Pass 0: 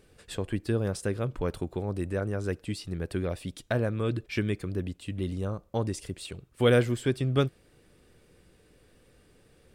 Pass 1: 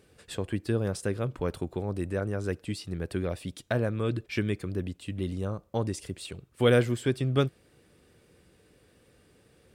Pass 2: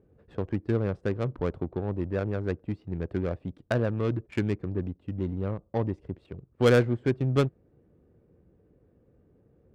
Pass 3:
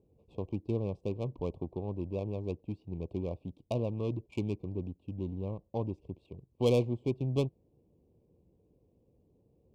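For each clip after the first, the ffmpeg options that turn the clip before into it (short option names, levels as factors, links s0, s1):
-af "highpass=60"
-af "adynamicsmooth=sensitivity=2.5:basefreq=620,volume=1.19"
-af "asuperstop=centerf=1600:order=12:qfactor=1.3,volume=0.501"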